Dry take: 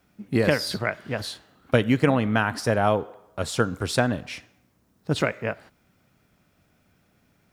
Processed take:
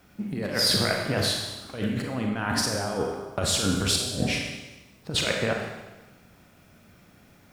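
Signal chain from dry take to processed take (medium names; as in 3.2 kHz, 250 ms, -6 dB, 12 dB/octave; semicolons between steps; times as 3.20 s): 3.92–4.33 s: resonant low shelf 770 Hz +10 dB, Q 1.5; compressor with a negative ratio -30 dBFS, ratio -1; Schroeder reverb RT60 1.1 s, combs from 31 ms, DRR 1.5 dB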